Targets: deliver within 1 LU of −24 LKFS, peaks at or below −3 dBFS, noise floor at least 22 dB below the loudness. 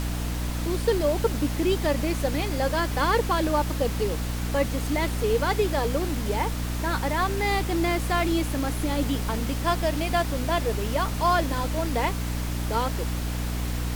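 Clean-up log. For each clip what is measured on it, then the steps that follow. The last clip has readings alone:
mains hum 60 Hz; hum harmonics up to 300 Hz; level of the hum −27 dBFS; background noise floor −29 dBFS; target noise floor −48 dBFS; integrated loudness −26.0 LKFS; sample peak −10.5 dBFS; target loudness −24.0 LKFS
→ hum removal 60 Hz, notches 5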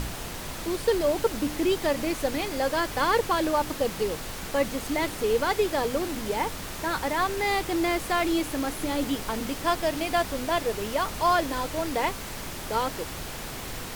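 mains hum none found; background noise floor −37 dBFS; target noise floor −50 dBFS
→ noise reduction from a noise print 13 dB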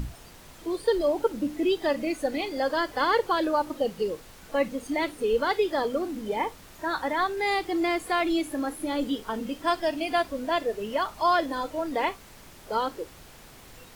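background noise floor −49 dBFS; target noise floor −50 dBFS
→ noise reduction from a noise print 6 dB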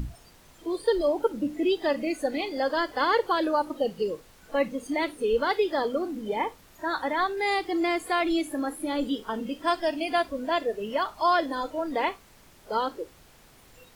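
background noise floor −55 dBFS; integrated loudness −27.5 LKFS; sample peak −12.5 dBFS; target loudness −24.0 LKFS
→ level +3.5 dB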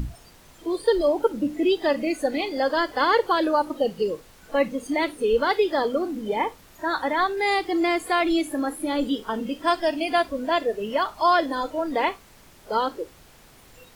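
integrated loudness −24.0 LKFS; sample peak −9.0 dBFS; background noise floor −52 dBFS

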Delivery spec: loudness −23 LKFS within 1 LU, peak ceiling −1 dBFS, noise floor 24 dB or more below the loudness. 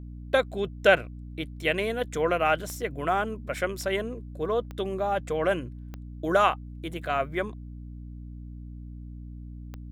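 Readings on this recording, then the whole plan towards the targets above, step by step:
number of clicks 4; mains hum 60 Hz; hum harmonics up to 300 Hz; level of the hum −38 dBFS; integrated loudness −27.5 LKFS; sample peak −7.0 dBFS; target loudness −23.0 LKFS
→ click removal
mains-hum notches 60/120/180/240/300 Hz
level +4.5 dB

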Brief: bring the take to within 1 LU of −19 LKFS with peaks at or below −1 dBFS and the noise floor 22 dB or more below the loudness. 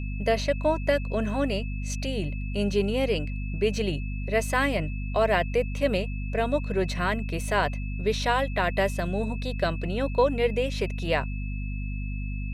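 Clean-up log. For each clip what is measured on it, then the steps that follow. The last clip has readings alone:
mains hum 50 Hz; hum harmonics up to 250 Hz; level of the hum −29 dBFS; interfering tone 2,600 Hz; level of the tone −43 dBFS; integrated loudness −27.5 LKFS; sample peak −9.5 dBFS; target loudness −19.0 LKFS
→ hum removal 50 Hz, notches 5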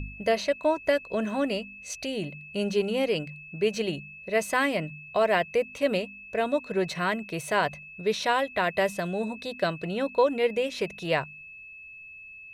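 mains hum none found; interfering tone 2,600 Hz; level of the tone −43 dBFS
→ notch filter 2,600 Hz, Q 30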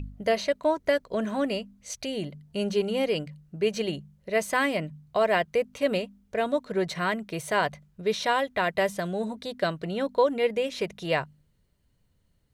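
interfering tone none found; integrated loudness −28.0 LKFS; sample peak −10.5 dBFS; target loudness −19.0 LKFS
→ level +9 dB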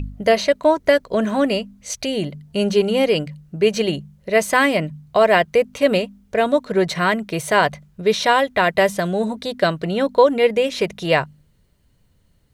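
integrated loudness −19.0 LKFS; sample peak −1.5 dBFS; background noise floor −59 dBFS

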